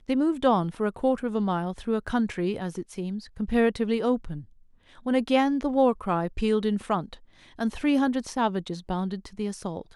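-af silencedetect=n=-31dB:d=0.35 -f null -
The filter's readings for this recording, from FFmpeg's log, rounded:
silence_start: 4.39
silence_end: 5.06 | silence_duration: 0.67
silence_start: 7.14
silence_end: 7.59 | silence_duration: 0.46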